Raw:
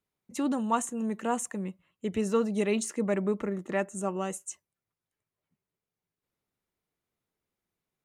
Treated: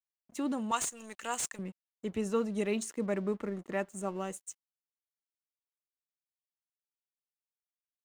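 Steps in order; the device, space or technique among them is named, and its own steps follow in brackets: 0.71–1.59 s: frequency weighting ITU-R 468; early transistor amplifier (crossover distortion -51.5 dBFS; slew-rate limiter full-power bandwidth 310 Hz); trim -4 dB

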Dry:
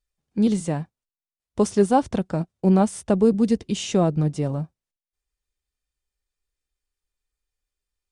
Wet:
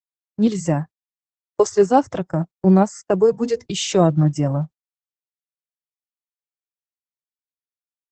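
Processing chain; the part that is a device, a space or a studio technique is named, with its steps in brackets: 3.26–3.67 s: de-hum 48.68 Hz, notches 19; spectral noise reduction 24 dB; video call (high-pass 110 Hz 24 dB/octave; level rider gain up to 8 dB; gate -30 dBFS, range -39 dB; Opus 12 kbps 48 kHz)

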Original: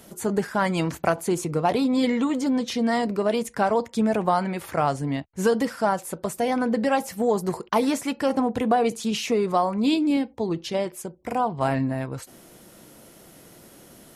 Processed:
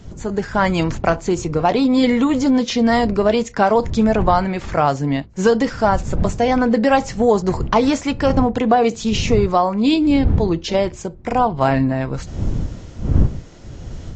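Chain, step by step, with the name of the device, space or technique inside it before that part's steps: smartphone video outdoors (wind noise 110 Hz -31 dBFS; level rider gain up to 9 dB; AAC 48 kbps 16 kHz)

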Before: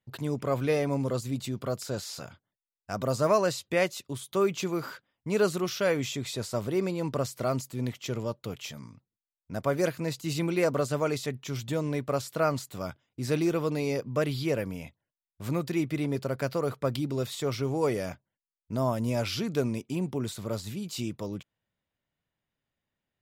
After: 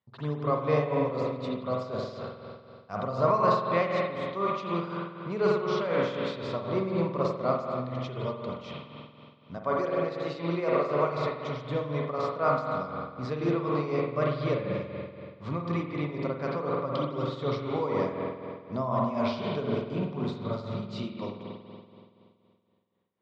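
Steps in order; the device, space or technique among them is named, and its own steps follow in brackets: 9.57–11.12 s: high-pass 190 Hz 12 dB/octave; combo amplifier with spring reverb and tremolo (spring tank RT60 2.4 s, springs 47 ms, chirp 40 ms, DRR -2.5 dB; tremolo 4 Hz, depth 62%; cabinet simulation 79–4100 Hz, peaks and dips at 120 Hz -5 dB, 310 Hz -7 dB, 1.1 kHz +8 dB, 1.6 kHz -6 dB, 2.7 kHz -6 dB)

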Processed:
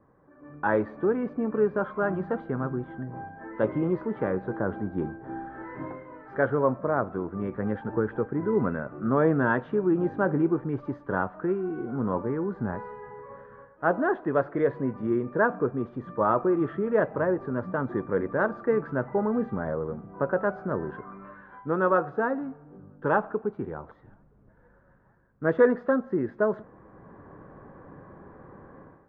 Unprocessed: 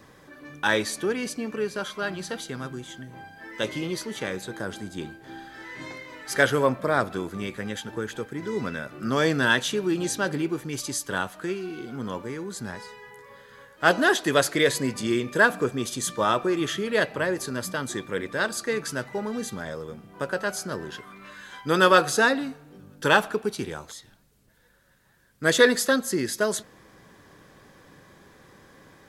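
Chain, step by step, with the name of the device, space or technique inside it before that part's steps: action camera in a waterproof case (low-pass 1.3 kHz 24 dB/octave; level rider gain up to 15 dB; trim -9 dB; AAC 64 kbps 44.1 kHz)

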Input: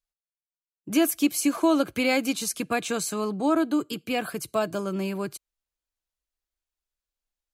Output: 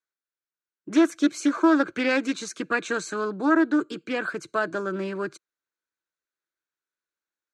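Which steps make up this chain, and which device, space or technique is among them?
full-range speaker at full volume (loudspeaker Doppler distortion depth 0.26 ms; cabinet simulation 210–6400 Hz, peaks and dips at 220 Hz -4 dB, 340 Hz +5 dB, 730 Hz -9 dB, 1.5 kHz +9 dB, 3 kHz -9 dB, 5 kHz -9 dB); trim +1.5 dB

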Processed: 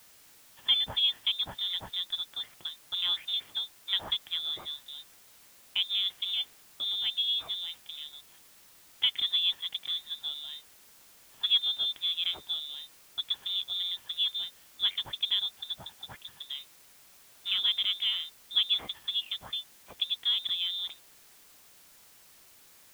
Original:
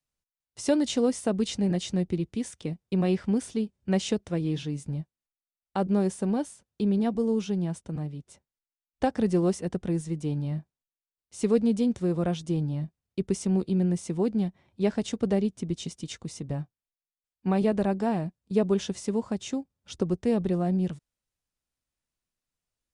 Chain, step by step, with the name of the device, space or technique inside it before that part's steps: scrambled radio voice (band-pass 360–2800 Hz; frequency inversion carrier 3.8 kHz; white noise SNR 23 dB)

